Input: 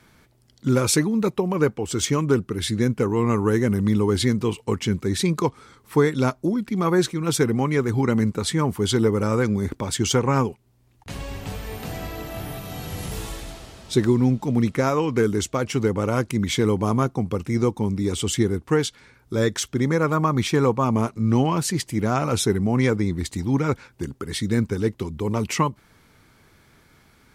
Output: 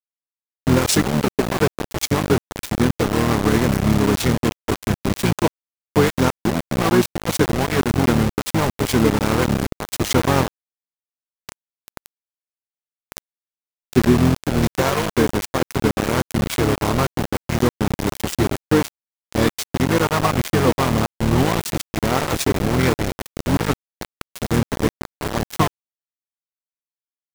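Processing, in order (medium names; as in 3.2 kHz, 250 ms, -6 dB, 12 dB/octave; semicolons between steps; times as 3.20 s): harmony voices -7 st -3 dB, +3 st -15 dB; small samples zeroed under -18 dBFS; trim +1.5 dB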